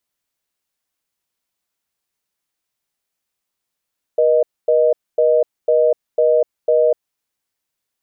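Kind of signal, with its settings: call progress tone reorder tone, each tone -13.5 dBFS 3.00 s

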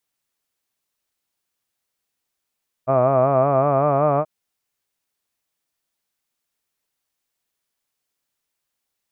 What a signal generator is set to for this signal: formant-synthesis vowel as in hud, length 1.38 s, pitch 128 Hz, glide +2.5 st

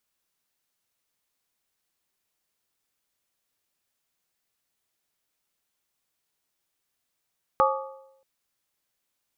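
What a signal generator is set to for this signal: skin hit, lowest mode 535 Hz, modes 4, decay 0.86 s, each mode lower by 0 dB, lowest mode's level -20 dB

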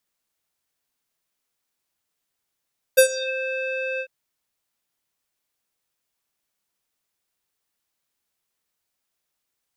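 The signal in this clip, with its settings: synth note square C5 12 dB/octave, low-pass 2.4 kHz, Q 7.1, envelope 2.5 oct, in 0.34 s, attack 16 ms, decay 0.09 s, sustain -19 dB, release 0.07 s, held 1.03 s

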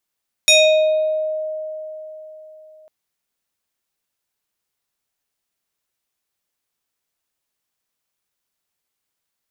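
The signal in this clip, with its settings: FM tone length 2.40 s, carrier 623 Hz, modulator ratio 4.99, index 2.3, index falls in 0.97 s exponential, decay 3.89 s, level -7.5 dB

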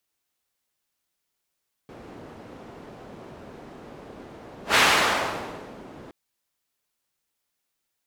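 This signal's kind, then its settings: whoosh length 4.22 s, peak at 2.87 s, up 0.13 s, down 1.12 s, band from 380 Hz, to 1.9 kHz, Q 0.73, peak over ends 25.5 dB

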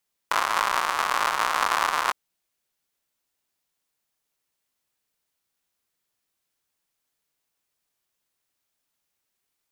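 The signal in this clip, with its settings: rain from filtered ticks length 1.81 s, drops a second 160, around 1.1 kHz, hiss -29 dB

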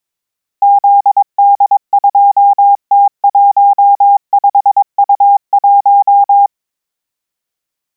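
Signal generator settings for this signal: Morse "ZD2T15U1" 22 wpm 805 Hz -3 dBFS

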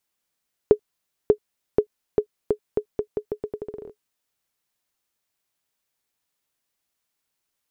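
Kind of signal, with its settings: bouncing ball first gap 0.59 s, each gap 0.82, 421 Hz, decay 83 ms -3 dBFS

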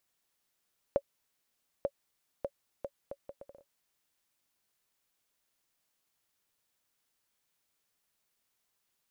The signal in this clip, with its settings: bouncing ball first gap 0.89 s, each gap 0.67, 560 Hz, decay 57 ms -16 dBFS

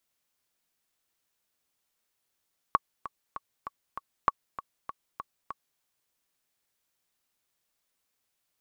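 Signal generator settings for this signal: metronome 196 bpm, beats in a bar 5, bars 2, 1.12 kHz, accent 15 dB -8 dBFS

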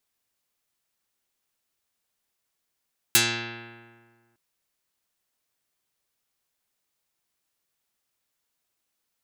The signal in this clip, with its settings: plucked string A#2, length 1.21 s, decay 1.73 s, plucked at 0.19, dark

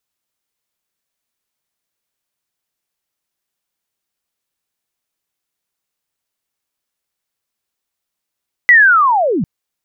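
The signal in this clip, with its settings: sweep linear 2 kHz -> 140 Hz -3 dBFS -> -14 dBFS 0.75 s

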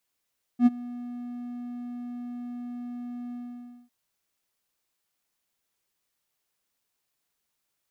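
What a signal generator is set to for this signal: ADSR triangle 243 Hz, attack 73 ms, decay 28 ms, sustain -21.5 dB, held 2.74 s, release 563 ms -10.5 dBFS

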